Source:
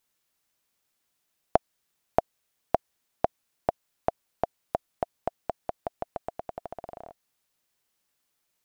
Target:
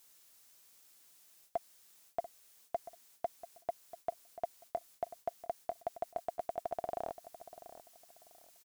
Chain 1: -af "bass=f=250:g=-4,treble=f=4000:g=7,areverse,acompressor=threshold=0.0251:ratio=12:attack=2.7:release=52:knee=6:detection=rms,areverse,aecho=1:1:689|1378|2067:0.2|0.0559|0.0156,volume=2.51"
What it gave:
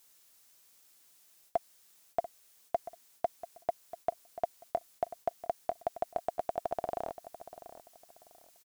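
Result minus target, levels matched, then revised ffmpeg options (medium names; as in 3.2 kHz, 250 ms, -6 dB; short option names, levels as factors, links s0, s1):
compression: peak gain reduction -6 dB
-af "bass=f=250:g=-4,treble=f=4000:g=7,areverse,acompressor=threshold=0.0119:ratio=12:attack=2.7:release=52:knee=6:detection=rms,areverse,aecho=1:1:689|1378|2067:0.2|0.0559|0.0156,volume=2.51"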